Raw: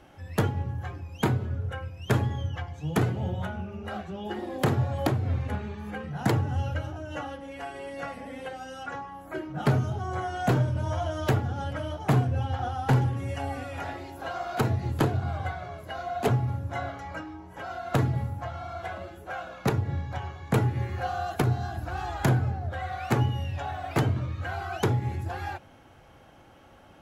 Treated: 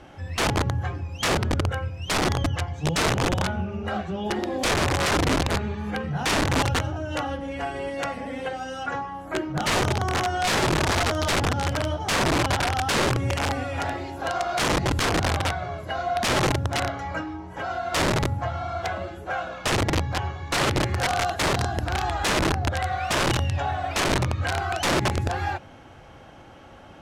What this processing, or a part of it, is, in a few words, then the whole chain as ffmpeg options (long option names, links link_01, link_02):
overflowing digital effects unit: -filter_complex "[0:a]asettb=1/sr,asplit=3[link_01][link_02][link_03];[link_01]atrim=end=7.294[link_04];[link_02]atrim=start=7.29:end=7.9,asetpts=PTS-STARTPTS,afade=type=in:duration=0.004:curve=qsin,afade=type=out:start_time=0.606:duration=0.004:curve=qsin,lowshelf=frequency=180:gain=7.5[link_05];[link_03]atrim=start=7.896[link_06];[link_04][link_05]acrossfade=duration=0.004:curve1=hsin:curve2=qsin[link_07];[link_07][link_06]acrossfade=duration=0.004:curve1=qsin:curve2=hsin,aeval=exprs='(mod(15.8*val(0)+1,2)-1)/15.8':channel_layout=same,lowpass=8400,volume=7dB"